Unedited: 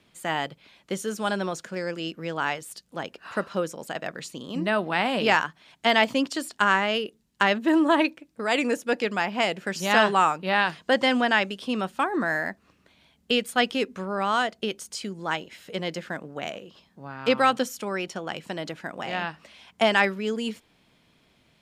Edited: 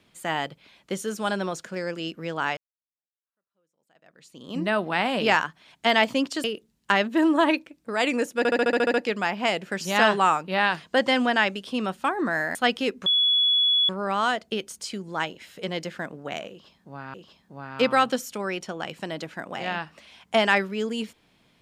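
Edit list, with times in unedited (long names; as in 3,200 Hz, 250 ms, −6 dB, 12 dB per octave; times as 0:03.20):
0:02.57–0:04.53: fade in exponential
0:06.44–0:06.95: remove
0:08.89: stutter 0.07 s, 9 plays
0:12.50–0:13.49: remove
0:14.00: insert tone 3,390 Hz −17.5 dBFS 0.83 s
0:16.61–0:17.25: repeat, 2 plays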